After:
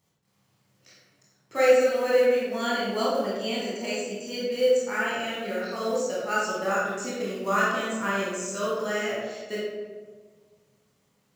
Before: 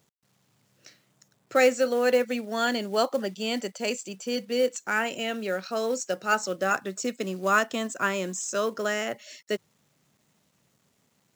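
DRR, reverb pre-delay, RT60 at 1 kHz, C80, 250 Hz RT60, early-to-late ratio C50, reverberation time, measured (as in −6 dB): −7.5 dB, 21 ms, 1.2 s, 2.0 dB, 1.8 s, −1.5 dB, 1.5 s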